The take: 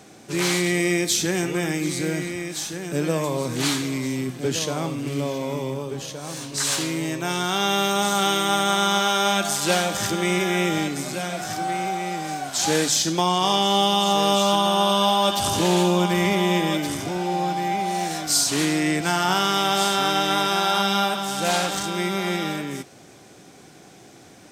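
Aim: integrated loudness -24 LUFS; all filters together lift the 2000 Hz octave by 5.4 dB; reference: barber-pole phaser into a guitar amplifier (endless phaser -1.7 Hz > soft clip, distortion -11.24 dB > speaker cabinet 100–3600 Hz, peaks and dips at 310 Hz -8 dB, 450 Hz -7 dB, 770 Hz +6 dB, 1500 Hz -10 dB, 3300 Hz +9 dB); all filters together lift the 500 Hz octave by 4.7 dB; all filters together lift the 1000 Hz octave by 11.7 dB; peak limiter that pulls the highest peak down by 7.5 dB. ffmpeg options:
-filter_complex "[0:a]equalizer=f=500:t=o:g=6,equalizer=f=1k:t=o:g=8,equalizer=f=2k:t=o:g=6.5,alimiter=limit=-8.5dB:level=0:latency=1,asplit=2[a][b];[b]afreqshift=-1.7[c];[a][c]amix=inputs=2:normalize=1,asoftclip=threshold=-20.5dB,highpass=100,equalizer=f=310:t=q:w=4:g=-8,equalizer=f=450:t=q:w=4:g=-7,equalizer=f=770:t=q:w=4:g=6,equalizer=f=1.5k:t=q:w=4:g=-10,equalizer=f=3.3k:t=q:w=4:g=9,lowpass=f=3.6k:w=0.5412,lowpass=f=3.6k:w=1.3066,volume=1dB"

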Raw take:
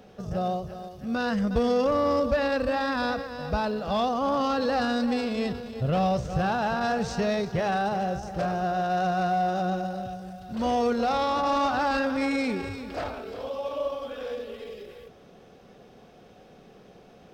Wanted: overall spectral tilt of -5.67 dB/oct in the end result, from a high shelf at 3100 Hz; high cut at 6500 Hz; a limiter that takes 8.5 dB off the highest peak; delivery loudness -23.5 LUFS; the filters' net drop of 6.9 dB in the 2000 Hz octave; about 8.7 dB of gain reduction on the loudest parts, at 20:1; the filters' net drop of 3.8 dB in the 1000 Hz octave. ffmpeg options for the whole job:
-af "lowpass=6.5k,equalizer=f=1k:t=o:g=-4,equalizer=f=2k:t=o:g=-7,highshelf=f=3.1k:g=-3,acompressor=threshold=-29dB:ratio=20,volume=14dB,alimiter=limit=-15.5dB:level=0:latency=1"

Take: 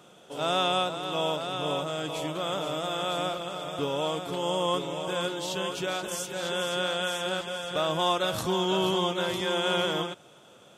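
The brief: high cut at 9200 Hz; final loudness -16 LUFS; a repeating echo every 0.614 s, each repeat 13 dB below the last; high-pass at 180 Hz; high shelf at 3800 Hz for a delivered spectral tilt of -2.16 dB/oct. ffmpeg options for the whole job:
-af "highpass=180,lowpass=9.2k,highshelf=f=3.8k:g=9,aecho=1:1:614|1228|1842:0.224|0.0493|0.0108,volume=11dB"

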